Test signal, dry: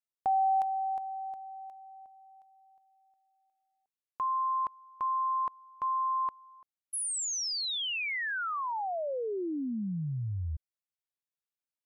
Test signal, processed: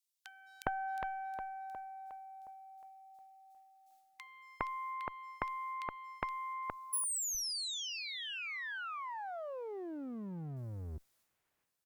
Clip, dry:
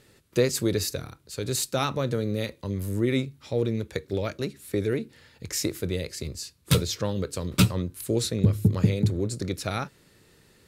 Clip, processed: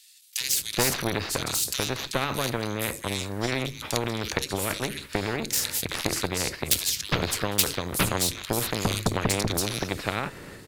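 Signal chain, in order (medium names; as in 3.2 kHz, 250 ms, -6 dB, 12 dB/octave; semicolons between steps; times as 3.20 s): transient shaper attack +6 dB, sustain +10 dB; Chebyshev shaper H 6 -16 dB, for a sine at -1.5 dBFS; bands offset in time highs, lows 410 ms, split 2.9 kHz; spectrum-flattening compressor 2:1; trim -2.5 dB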